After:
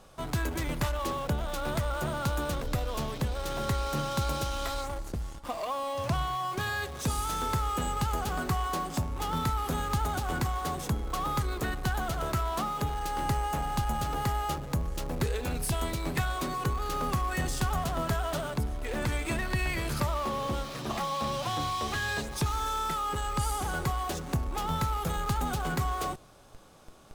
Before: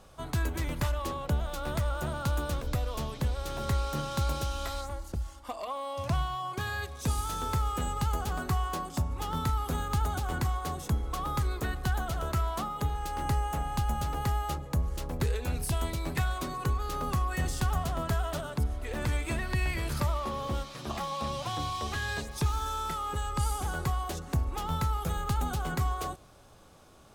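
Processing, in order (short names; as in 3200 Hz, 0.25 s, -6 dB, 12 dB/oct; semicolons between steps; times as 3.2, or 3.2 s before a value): bell 72 Hz -7.5 dB 0.79 oct; in parallel at -12 dB: Schmitt trigger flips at -45.5 dBFS; on the sum: gain +1 dB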